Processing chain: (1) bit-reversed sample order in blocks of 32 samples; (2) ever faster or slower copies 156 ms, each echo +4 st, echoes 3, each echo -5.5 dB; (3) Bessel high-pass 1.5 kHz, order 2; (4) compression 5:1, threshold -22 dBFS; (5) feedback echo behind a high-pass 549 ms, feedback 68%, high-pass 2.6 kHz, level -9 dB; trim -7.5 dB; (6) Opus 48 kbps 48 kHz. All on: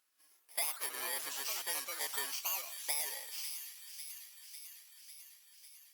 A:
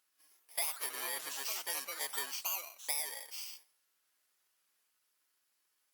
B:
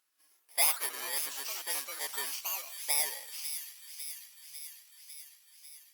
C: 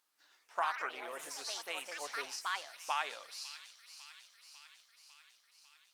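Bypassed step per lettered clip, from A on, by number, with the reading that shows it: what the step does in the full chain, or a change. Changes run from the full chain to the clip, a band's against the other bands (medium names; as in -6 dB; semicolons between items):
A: 5, momentary loudness spread change -10 LU; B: 4, mean gain reduction 1.5 dB; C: 1, 8 kHz band -11.5 dB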